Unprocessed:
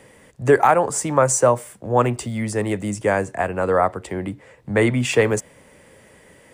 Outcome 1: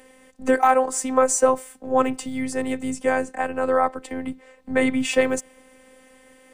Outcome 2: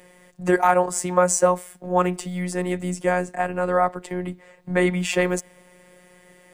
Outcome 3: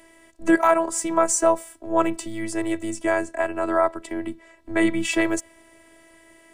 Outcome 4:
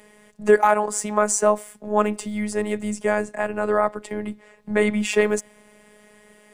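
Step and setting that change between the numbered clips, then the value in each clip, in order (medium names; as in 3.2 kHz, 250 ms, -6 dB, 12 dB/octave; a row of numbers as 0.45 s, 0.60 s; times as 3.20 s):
robot voice, frequency: 260 Hz, 180 Hz, 330 Hz, 210 Hz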